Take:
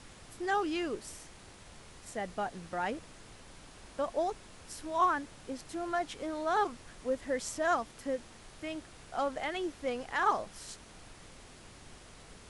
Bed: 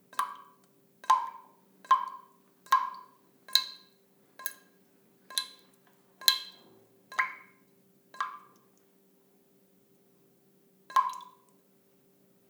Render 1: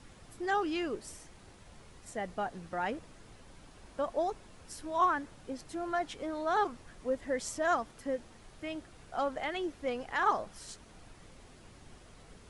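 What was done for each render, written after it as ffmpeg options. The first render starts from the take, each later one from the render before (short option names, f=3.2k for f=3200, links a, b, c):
-af "afftdn=nr=6:nf=-54"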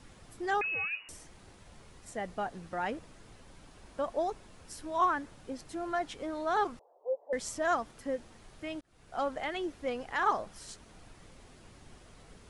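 -filter_complex "[0:a]asettb=1/sr,asplit=3[a][b][c];[a]atrim=end=0.614[d];[b]atrim=start=0.61:end=1.09,asetpts=PTS-STARTPTS,afade=t=in:d=0.004:c=qsin,afade=t=out:st=0.476:d=0.004:c=qsin,lowpass=f=2.5k:t=q:w=0.5098,lowpass=f=2.5k:t=q:w=0.6013,lowpass=f=2.5k:t=q:w=0.9,lowpass=f=2.5k:t=q:w=2.563,afreqshift=-2900[e];[c]atrim=start=1.086[f];[d][e]acrossfade=d=0.004:c1=hsin:c2=qsin[g];[g][f]acrossfade=d=0.004:c1=qsin:c2=hsin,asettb=1/sr,asplit=3[h][i][j];[h]atrim=end=6.794[k];[i]atrim=start=6.79:end=7.33,asetpts=PTS-STARTPTS,afade=t=in:d=0.004:c=qsin,afade=t=out:st=0.536:d=0.004:c=qsin,asuperpass=centerf=630:order=8:qfactor=1.3[l];[j]atrim=start=7.326[m];[k][l]acrossfade=d=0.004:c1=hsin:c2=qsin[n];[n][m]acrossfade=d=0.004:c1=qsin:c2=hsin,asplit=2[o][p];[o]atrim=end=8.81,asetpts=PTS-STARTPTS,afade=t=out:st=8.806:d=0.004:c=hsin[q];[p]atrim=start=8.81,asetpts=PTS-STARTPTS,afade=t=in:d=0.4[r];[q][r]concat=n=2:v=0:a=1"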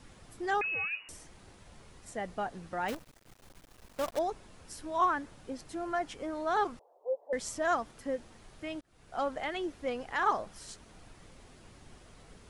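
-filter_complex "[0:a]asettb=1/sr,asplit=3[a][b][c];[a]atrim=end=2.884[d];[b]atrim=start=2.88:end=4.19,asetpts=PTS-STARTPTS,afade=t=in:d=0.004:c=qsin,afade=t=out:st=1.306:d=0.004:c=qsin,acrusher=bits=7:dc=4:mix=0:aa=0.000001[e];[c]atrim=start=4.186[f];[d][e]acrossfade=d=0.004:c1=hsin:c2=qsin[g];[g][f]acrossfade=d=0.004:c1=qsin:c2=hsin,asettb=1/sr,asplit=3[h][i][j];[h]atrim=end=5.844[k];[i]atrim=start=5.84:end=6.46,asetpts=PTS-STARTPTS,afade=t=in:d=0.004:c=qsin,afade=t=out:st=0.616:d=0.004:c=qsin,equalizer=f=3.8k:t=o:w=0.29:g=-5.5[l];[j]atrim=start=6.456[m];[k][l]acrossfade=d=0.004:c1=hsin:c2=qsin[n];[n][m]acrossfade=d=0.004:c1=qsin:c2=hsin"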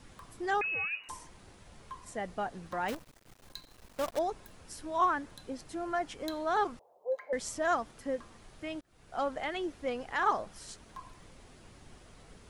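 -filter_complex "[1:a]volume=-22.5dB[a];[0:a][a]amix=inputs=2:normalize=0"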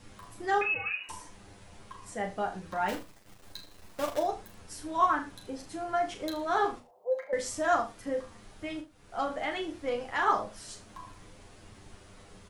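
-filter_complex "[0:a]asplit=2[a][b];[b]adelay=37,volume=-7dB[c];[a][c]amix=inputs=2:normalize=0,aecho=1:1:10|79:0.668|0.237"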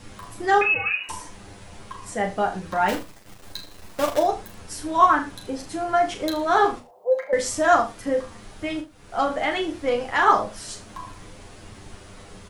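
-af "volume=9dB"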